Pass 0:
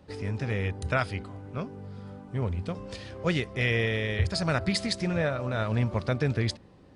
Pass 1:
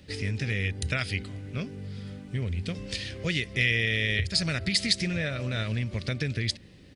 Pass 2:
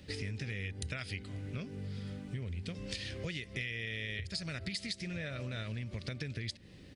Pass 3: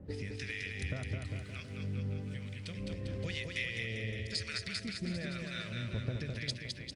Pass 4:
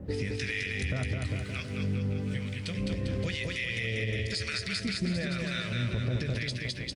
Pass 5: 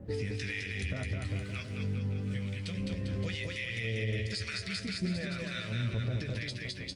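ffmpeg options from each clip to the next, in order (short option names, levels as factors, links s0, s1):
-af "equalizer=f=1000:t=o:w=2.5:g=-10,acompressor=threshold=0.0282:ratio=6,firequalizer=gain_entry='entry(620,0);entry(900,-5);entry(1900,11);entry(6700,6)':delay=0.05:min_phase=1,volume=1.68"
-af "acompressor=threshold=0.0178:ratio=6,volume=0.841"
-filter_complex "[0:a]acrossover=split=1100[s0][s1];[s0]aeval=exprs='val(0)*(1-1/2+1/2*cos(2*PI*1*n/s))':c=same[s2];[s1]aeval=exprs='val(0)*(1-1/2-1/2*cos(2*PI*1*n/s))':c=same[s3];[s2][s3]amix=inputs=2:normalize=0,asplit=2[s4][s5];[s5]aecho=0:1:210|399|569.1|722.2|860:0.631|0.398|0.251|0.158|0.1[s6];[s4][s6]amix=inputs=2:normalize=0,volume=1.58"
-filter_complex "[0:a]alimiter=level_in=2.11:limit=0.0631:level=0:latency=1:release=51,volume=0.473,asplit=2[s0][s1];[s1]adelay=16,volume=0.251[s2];[s0][s2]amix=inputs=2:normalize=0,volume=2.66"
-af "flanger=delay=8.8:depth=2.3:regen=47:speed=0.51:shape=triangular"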